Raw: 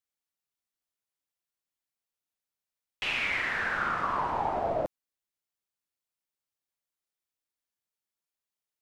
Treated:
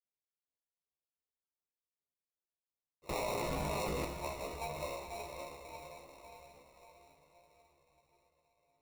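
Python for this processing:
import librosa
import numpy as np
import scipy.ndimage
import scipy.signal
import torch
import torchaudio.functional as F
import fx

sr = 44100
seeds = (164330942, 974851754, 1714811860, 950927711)

y = x + 0.73 * np.pad(x, (int(1.8 * sr / 1000.0), 0))[:len(x)]
y = fx.echo_thinned(y, sr, ms=368, feedback_pct=64, hz=690.0, wet_db=-13.5)
y = fx.wah_lfo(y, sr, hz=2.6, low_hz=210.0, high_hz=2700.0, q=6.0)
y = fx.resonator_bank(y, sr, root=46, chord='minor', decay_s=0.66)
y = fx.echo_diffused(y, sr, ms=534, feedback_pct=52, wet_db=-3.0)
y = fx.sample_hold(y, sr, seeds[0], rate_hz=1600.0, jitter_pct=0)
y = fx.chorus_voices(y, sr, voices=4, hz=0.36, base_ms=15, depth_ms=3.7, mix_pct=45)
y = fx.env_flatten(y, sr, amount_pct=100, at=(3.09, 4.05))
y = F.gain(torch.from_numpy(y), 17.5).numpy()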